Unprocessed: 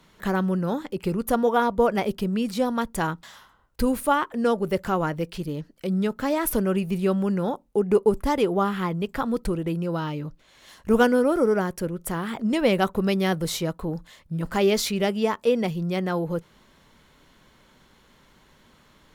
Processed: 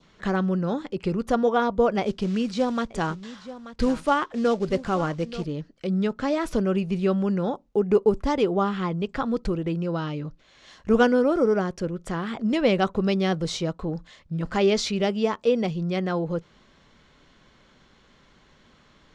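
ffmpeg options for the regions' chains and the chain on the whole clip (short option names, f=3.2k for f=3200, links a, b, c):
-filter_complex "[0:a]asettb=1/sr,asplit=3[a][b][c];[a]atrim=end=2.024[d];[b]atrim=start=2.02:end=5.47,asetpts=PTS-STARTPTS,afade=t=in:d=0.004:c=qsin,afade=t=out:st=3.446:d=0.004:c=qsin,acrusher=bits=5:mode=log:mix=0:aa=0.000001,aecho=1:1:883:0.178,atrim=end_sample=152145[e];[c]atrim=start=5.466[f];[d][e]acrossfade=d=0.004:c1=hsin:c2=qsin[g];[g][f]acrossfade=d=0.004:c1=qsin:c2=hsin,lowpass=f=6.7k:w=0.5412,lowpass=f=6.7k:w=1.3066,bandreject=f=920:w=14,adynamicequalizer=threshold=0.00708:dfrequency=1800:dqfactor=1.8:tfrequency=1800:tqfactor=1.8:attack=5:release=100:ratio=0.375:range=2:mode=cutabove:tftype=bell"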